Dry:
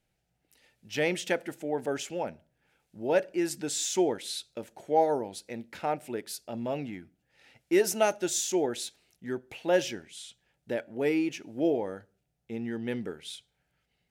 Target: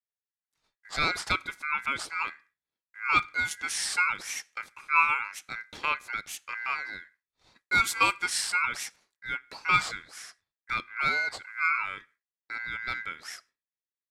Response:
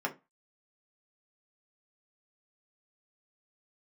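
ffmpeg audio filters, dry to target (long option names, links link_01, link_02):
-filter_complex "[0:a]agate=range=-33dB:threshold=-54dB:ratio=3:detection=peak,acrossover=split=310[link_01][link_02];[link_01]acompressor=threshold=-39dB:ratio=6[link_03];[link_03][link_02]amix=inputs=2:normalize=0,aeval=exprs='val(0)*sin(2*PI*1800*n/s)':channel_layout=same,lowpass=11000,volume=4dB"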